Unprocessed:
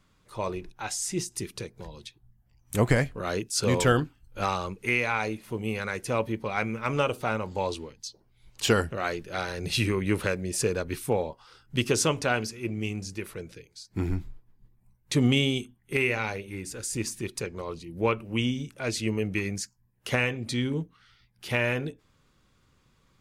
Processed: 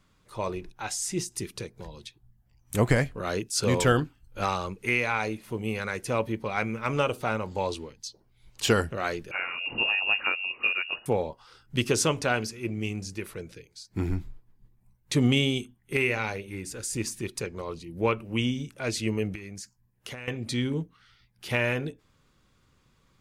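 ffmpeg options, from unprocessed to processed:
-filter_complex "[0:a]asettb=1/sr,asplit=3[a][b][c];[a]atrim=end=9.314[d];[b]atrim=start=9.31:end=11.06,asetpts=PTS-STARTPTS,afade=t=in:d=0.004:c=qsin,afade=t=out:st=1.746:d=0.004:c=qsin,lowpass=f=2.5k:t=q:w=0.5098,lowpass=f=2.5k:t=q:w=0.6013,lowpass=f=2.5k:t=q:w=0.9,lowpass=f=2.5k:t=q:w=2.563,afreqshift=-2900[e];[c]atrim=start=11.056[f];[d][e]acrossfade=d=0.004:c1=hsin:c2=qsin[g];[g][f]acrossfade=d=0.004:c1=qsin:c2=hsin,asettb=1/sr,asplit=3[h][i][j];[h]atrim=end=19.354[k];[i]atrim=start=19.35:end=20.28,asetpts=PTS-STARTPTS,afade=t=in:d=0.004:c=qsin,afade=t=out:st=0.926:d=0.004:c=qsin,acompressor=threshold=-36dB:ratio=8:attack=3.2:release=140:knee=1:detection=peak[l];[j]atrim=start=20.276[m];[k][l]acrossfade=d=0.004:c1=hsin:c2=qsin[n];[n][m]acrossfade=d=0.004:c1=qsin:c2=hsin"

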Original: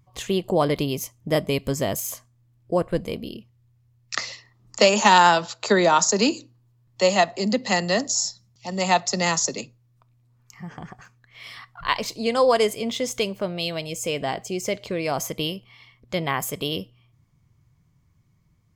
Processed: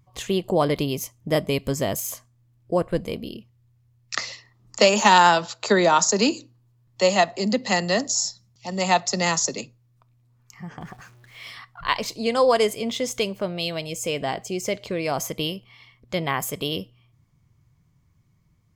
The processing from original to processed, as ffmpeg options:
-filter_complex "[0:a]asettb=1/sr,asplit=3[a][b][c];[a]atrim=end=4.854[d];[b]atrim=start=4.85:end=5.29,asetpts=PTS-STARTPTS,afade=t=in:d=0.004:c=qsin,afade=t=out:st=0.436:d=0.004:c=qsin,aeval=exprs='val(0)*gte(abs(val(0)),0.00708)':c=same[e];[c]atrim=start=5.286[f];[d][e]acrossfade=d=0.004:c1=hsin:c2=qsin[g];[g][f]acrossfade=d=0.004:c1=qsin:c2=hsin,asettb=1/sr,asplit=3[h][i][j];[h]atrim=end=10.814[k];[i]atrim=start=10.81:end=11.51,asetpts=PTS-STARTPTS,afade=t=in:d=0.004:c=qsin,afade=t=out:st=0.696:d=0.004:c=qsin,aeval=exprs='val(0)+0.5*0.00335*sgn(val(0))':c=same[l];[j]atrim=start=11.506[m];[k][l]acrossfade=d=0.004:c1=hsin:c2=qsin[n];[n][m]acrossfade=d=0.004:c1=qsin:c2=hsin"

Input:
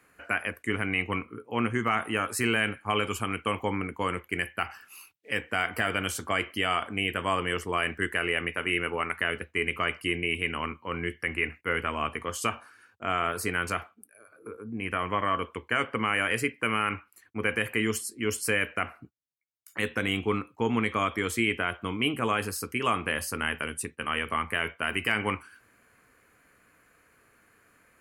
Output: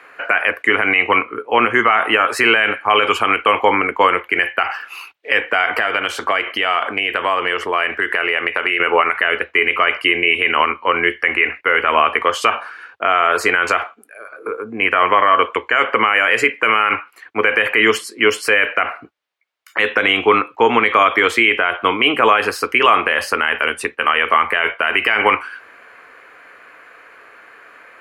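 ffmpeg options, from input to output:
-filter_complex "[0:a]asettb=1/sr,asplit=3[a][b][c];[a]atrim=end=5.704[d];[b]atrim=start=5.7:end=8.8,asetpts=PTS-STARTPTS,afade=t=in:d=0.004:c=qsin,afade=t=out:st=3.096:d=0.004:c=qsin,acompressor=threshold=-32dB:ratio=6:attack=3.2:release=140:knee=1:detection=peak[e];[c]atrim=start=8.796[f];[d][e]acrossfade=d=0.004:c1=hsin:c2=qsin[g];[g][f]acrossfade=d=0.004:c1=qsin:c2=hsin,asettb=1/sr,asplit=3[h][i][j];[h]atrim=end=13.194[k];[i]atrim=start=13.19:end=16.76,asetpts=PTS-STARTPTS,afade=t=in:d=0.004:c=qsin,afade=t=out:st=3.566:d=0.004:c=qsin,equalizer=f=7.1k:w=4.6:g=8.5[l];[j]atrim=start=16.756[m];[k][l]acrossfade=d=0.004:c1=hsin:c2=qsin[n];[n][m]acrossfade=d=0.004:c1=qsin:c2=hsin,acrossover=split=400 3900:gain=0.0708 1 0.0891[o][p][q];[o][p][q]amix=inputs=3:normalize=0,alimiter=level_in=22dB:limit=-1dB:release=50:level=0:latency=1,volume=-1dB"

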